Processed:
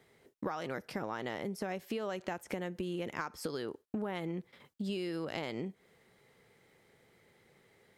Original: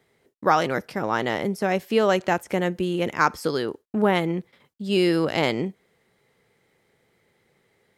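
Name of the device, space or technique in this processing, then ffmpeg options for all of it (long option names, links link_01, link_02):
serial compression, leveller first: -af "acompressor=threshold=-22dB:ratio=3,acompressor=threshold=-35dB:ratio=6"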